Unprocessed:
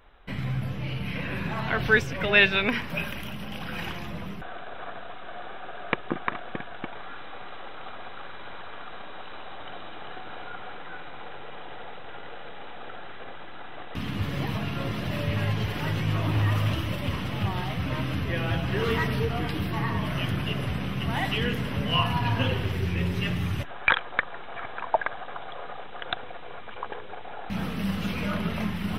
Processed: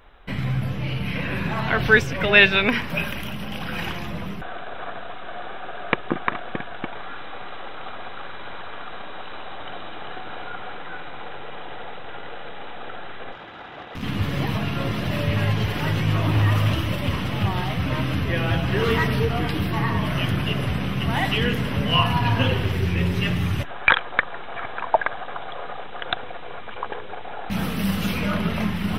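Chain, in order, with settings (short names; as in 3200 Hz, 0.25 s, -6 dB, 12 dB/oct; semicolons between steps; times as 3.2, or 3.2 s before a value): 13.32–14.03 tube stage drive 33 dB, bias 0.3; 27.51–28.18 high shelf 6700 Hz +9.5 dB; gain +5 dB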